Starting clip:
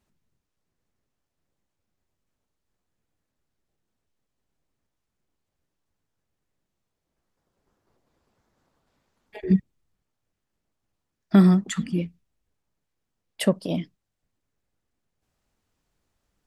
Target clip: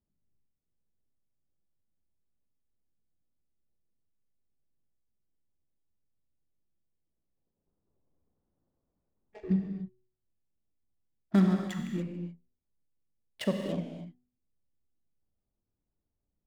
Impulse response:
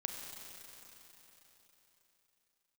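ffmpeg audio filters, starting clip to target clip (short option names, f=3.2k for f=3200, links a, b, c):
-filter_complex "[0:a]bandreject=f=123.7:t=h:w=4,bandreject=f=247.4:t=h:w=4,bandreject=f=371.1:t=h:w=4,bandreject=f=494.8:t=h:w=4,adynamicsmooth=sensitivity=6:basefreq=600[a];[1:a]atrim=start_sample=2205,afade=t=out:st=0.35:d=0.01,atrim=end_sample=15876[b];[a][b]afir=irnorm=-1:irlink=0,volume=-6.5dB"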